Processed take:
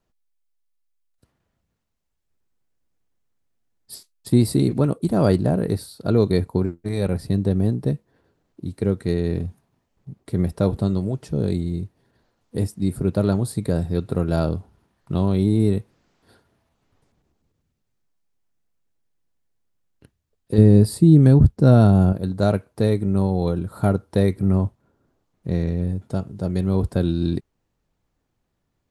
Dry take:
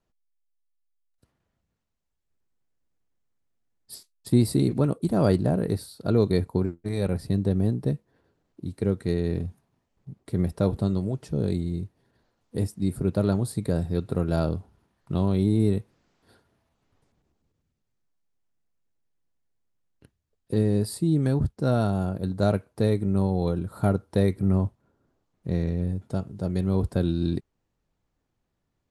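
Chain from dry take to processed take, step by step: 20.58–22.13 low shelf 430 Hz +9 dB; gain +3.5 dB

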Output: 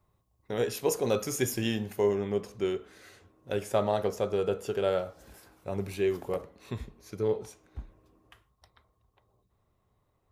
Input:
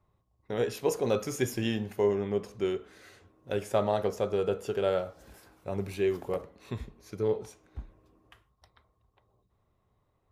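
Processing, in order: high shelf 5900 Hz +8.5 dB, from 2.41 s +3.5 dB

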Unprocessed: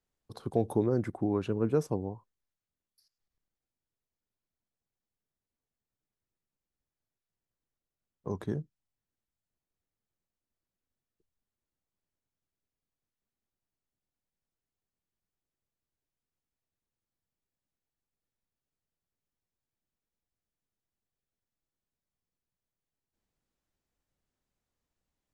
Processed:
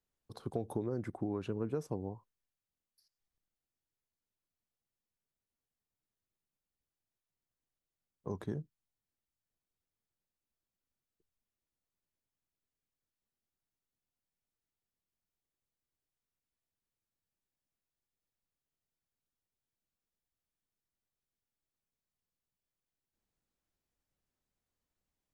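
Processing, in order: compressor, threshold -28 dBFS, peak gain reduction 7.5 dB; gain -3.5 dB

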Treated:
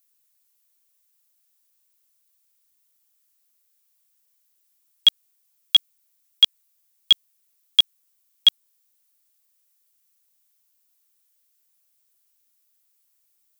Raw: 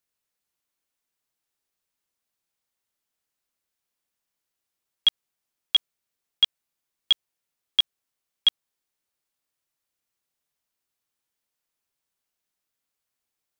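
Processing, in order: RIAA curve recording

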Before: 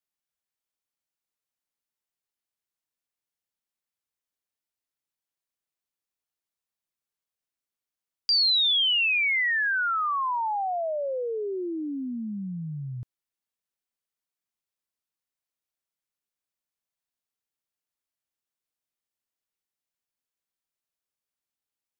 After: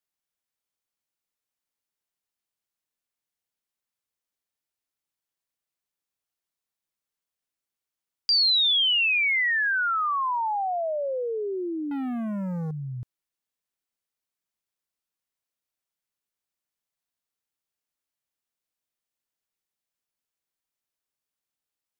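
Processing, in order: 11.91–12.71 sample leveller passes 3; gain +1 dB

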